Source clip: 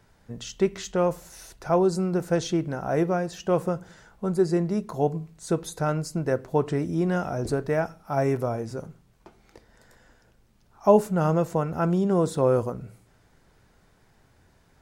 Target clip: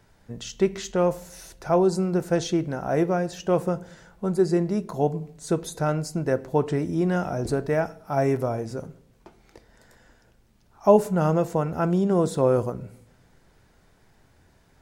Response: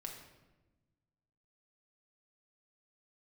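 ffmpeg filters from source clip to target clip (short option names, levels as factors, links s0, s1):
-filter_complex "[0:a]asplit=2[s0][s1];[s1]asuperstop=centerf=1200:order=4:qfactor=3.2[s2];[1:a]atrim=start_sample=2205,asetrate=70560,aresample=44100[s3];[s2][s3]afir=irnorm=-1:irlink=0,volume=0.422[s4];[s0][s4]amix=inputs=2:normalize=0"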